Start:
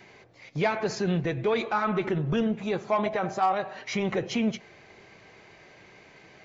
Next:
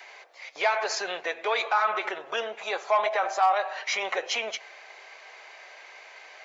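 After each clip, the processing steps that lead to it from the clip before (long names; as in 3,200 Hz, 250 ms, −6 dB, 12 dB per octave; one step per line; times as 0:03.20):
high-pass filter 610 Hz 24 dB per octave
in parallel at +1.5 dB: brickwall limiter −25 dBFS, peak gain reduction 10.5 dB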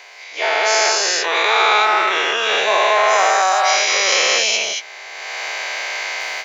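every bin's largest magnitude spread in time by 480 ms
high-shelf EQ 3,300 Hz +9.5 dB
automatic gain control gain up to 16 dB
level −2 dB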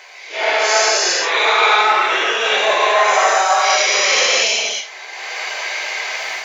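random phases in long frames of 200 ms
level +1 dB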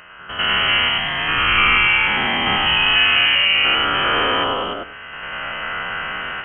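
spectrum averaged block by block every 100 ms
voice inversion scrambler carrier 3,600 Hz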